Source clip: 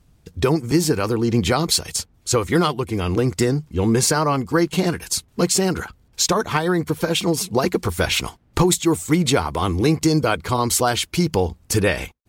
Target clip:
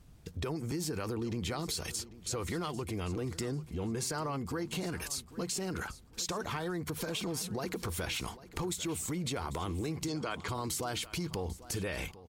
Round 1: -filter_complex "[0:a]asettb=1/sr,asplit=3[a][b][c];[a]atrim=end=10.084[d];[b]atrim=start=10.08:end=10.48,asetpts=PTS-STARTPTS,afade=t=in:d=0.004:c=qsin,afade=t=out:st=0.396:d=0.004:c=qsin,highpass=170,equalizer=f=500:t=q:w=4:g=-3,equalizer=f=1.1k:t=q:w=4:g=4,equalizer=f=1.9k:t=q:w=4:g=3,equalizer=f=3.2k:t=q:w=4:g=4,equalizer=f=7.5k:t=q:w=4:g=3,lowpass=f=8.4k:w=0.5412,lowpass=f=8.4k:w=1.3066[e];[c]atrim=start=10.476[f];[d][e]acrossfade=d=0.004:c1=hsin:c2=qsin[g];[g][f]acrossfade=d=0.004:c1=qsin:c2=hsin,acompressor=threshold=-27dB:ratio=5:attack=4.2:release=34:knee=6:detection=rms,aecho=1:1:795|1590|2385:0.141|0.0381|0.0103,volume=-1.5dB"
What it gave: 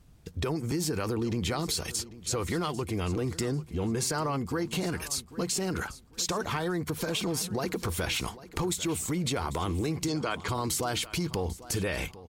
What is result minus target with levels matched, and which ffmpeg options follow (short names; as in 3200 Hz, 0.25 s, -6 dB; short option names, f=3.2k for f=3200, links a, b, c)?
compressor: peak gain reduction -5.5 dB
-filter_complex "[0:a]asettb=1/sr,asplit=3[a][b][c];[a]atrim=end=10.084[d];[b]atrim=start=10.08:end=10.48,asetpts=PTS-STARTPTS,afade=t=in:d=0.004:c=qsin,afade=t=out:st=0.396:d=0.004:c=qsin,highpass=170,equalizer=f=500:t=q:w=4:g=-3,equalizer=f=1.1k:t=q:w=4:g=4,equalizer=f=1.9k:t=q:w=4:g=3,equalizer=f=3.2k:t=q:w=4:g=4,equalizer=f=7.5k:t=q:w=4:g=3,lowpass=f=8.4k:w=0.5412,lowpass=f=8.4k:w=1.3066[e];[c]atrim=start=10.476[f];[d][e]acrossfade=d=0.004:c1=hsin:c2=qsin[g];[g][f]acrossfade=d=0.004:c1=qsin:c2=hsin,acompressor=threshold=-34dB:ratio=5:attack=4.2:release=34:knee=6:detection=rms,aecho=1:1:795|1590|2385:0.141|0.0381|0.0103,volume=-1.5dB"